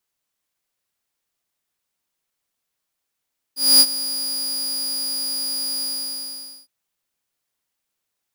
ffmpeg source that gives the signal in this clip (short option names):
-f lavfi -i "aevalsrc='0.562*(2*mod(4870*t,1)-1)':d=3.112:s=44100,afade=t=in:d=0.242,afade=t=out:st=0.242:d=0.053:silence=0.168,afade=t=out:st=2.26:d=0.852"